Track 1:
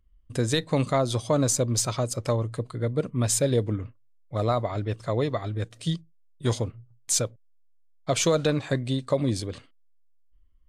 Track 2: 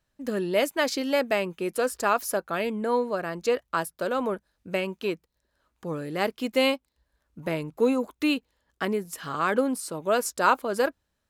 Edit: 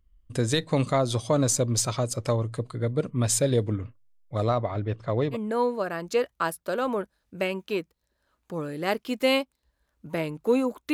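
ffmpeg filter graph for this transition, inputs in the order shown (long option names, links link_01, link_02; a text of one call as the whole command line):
ffmpeg -i cue0.wav -i cue1.wav -filter_complex "[0:a]asettb=1/sr,asplit=3[link_01][link_02][link_03];[link_01]atrim=end=4.494[link_04];[link_02]atrim=start=4.49:end=5.37,asetpts=PTS-STARTPTS,afade=type=in:duration=0.004:curve=qsin,afade=type=out:start_time=0.876:duration=0.004:curve=qsin,adynamicsmooth=sensitivity=1.5:basefreq=3300[link_05];[link_03]atrim=start=5.366[link_06];[link_04][link_05]acrossfade=duration=0.004:curve1=hsin:curve2=qsin[link_07];[link_07][link_06]acrossfade=duration=0.004:curve1=qsin:curve2=hsin,apad=whole_dur=10.93,atrim=end=10.93,atrim=end=5.37,asetpts=PTS-STARTPTS[link_08];[1:a]atrim=start=2.64:end=8.26,asetpts=PTS-STARTPTS[link_09];[link_08][link_09]acrossfade=duration=0.06:curve1=tri:curve2=tri" out.wav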